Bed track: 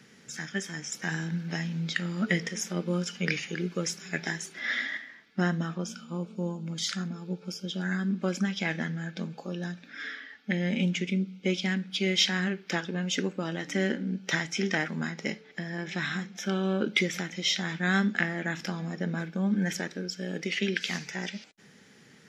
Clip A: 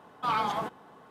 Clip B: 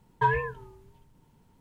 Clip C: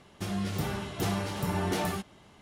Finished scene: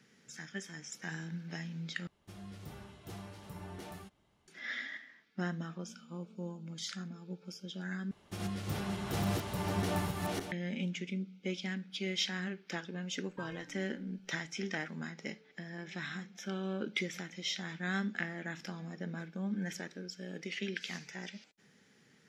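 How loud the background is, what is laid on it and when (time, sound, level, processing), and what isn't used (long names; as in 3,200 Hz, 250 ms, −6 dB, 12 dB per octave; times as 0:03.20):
bed track −9.5 dB
0:02.07: overwrite with C −17.5 dB + low-shelf EQ 79 Hz +6.5 dB
0:08.11: overwrite with C −7 dB + feedback delay that plays each chunk backwards 286 ms, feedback 43%, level 0 dB
0:13.16: mix in B −3.5 dB + stiff-string resonator 160 Hz, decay 0.45 s, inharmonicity 0.008
not used: A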